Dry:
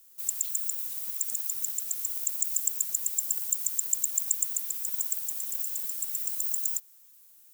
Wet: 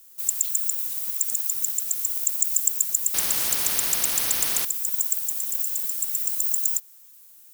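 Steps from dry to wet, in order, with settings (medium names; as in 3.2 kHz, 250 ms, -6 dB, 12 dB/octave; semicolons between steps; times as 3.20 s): 3.14–4.65 s: spectrum-flattening compressor 4:1; trim +6 dB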